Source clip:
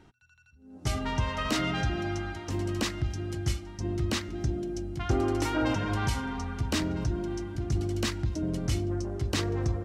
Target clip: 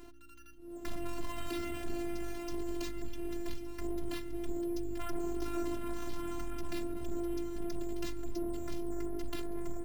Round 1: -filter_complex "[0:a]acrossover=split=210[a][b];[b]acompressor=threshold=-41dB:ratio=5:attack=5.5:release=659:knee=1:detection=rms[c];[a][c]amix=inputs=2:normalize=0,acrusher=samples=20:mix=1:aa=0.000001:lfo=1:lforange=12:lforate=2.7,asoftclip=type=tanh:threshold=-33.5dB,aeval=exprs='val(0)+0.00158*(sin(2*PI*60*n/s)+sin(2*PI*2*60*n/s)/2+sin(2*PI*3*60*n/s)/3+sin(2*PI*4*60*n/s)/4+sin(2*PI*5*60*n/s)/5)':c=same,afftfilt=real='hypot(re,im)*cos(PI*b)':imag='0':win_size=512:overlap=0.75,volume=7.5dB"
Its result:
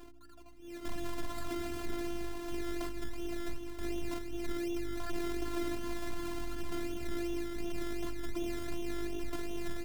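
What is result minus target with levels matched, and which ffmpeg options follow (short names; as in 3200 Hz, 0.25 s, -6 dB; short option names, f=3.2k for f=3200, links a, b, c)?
decimation with a swept rate: distortion +9 dB
-filter_complex "[0:a]acrossover=split=210[a][b];[b]acompressor=threshold=-41dB:ratio=5:attack=5.5:release=659:knee=1:detection=rms[c];[a][c]amix=inputs=2:normalize=0,acrusher=samples=5:mix=1:aa=0.000001:lfo=1:lforange=3:lforate=2.7,asoftclip=type=tanh:threshold=-33.5dB,aeval=exprs='val(0)+0.00158*(sin(2*PI*60*n/s)+sin(2*PI*2*60*n/s)/2+sin(2*PI*3*60*n/s)/3+sin(2*PI*4*60*n/s)/4+sin(2*PI*5*60*n/s)/5)':c=same,afftfilt=real='hypot(re,im)*cos(PI*b)':imag='0':win_size=512:overlap=0.75,volume=7.5dB"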